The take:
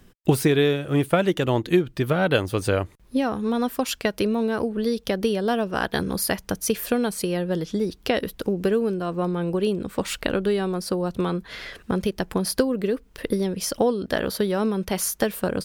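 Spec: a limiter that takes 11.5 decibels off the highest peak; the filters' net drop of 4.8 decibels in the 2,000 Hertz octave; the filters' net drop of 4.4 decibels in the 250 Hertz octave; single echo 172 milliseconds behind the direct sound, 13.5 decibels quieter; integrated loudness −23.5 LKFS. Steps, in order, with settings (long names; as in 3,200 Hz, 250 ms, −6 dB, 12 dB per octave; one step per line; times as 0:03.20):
parametric band 250 Hz −6 dB
parametric band 2,000 Hz −6.5 dB
brickwall limiter −17.5 dBFS
single-tap delay 172 ms −13.5 dB
level +5.5 dB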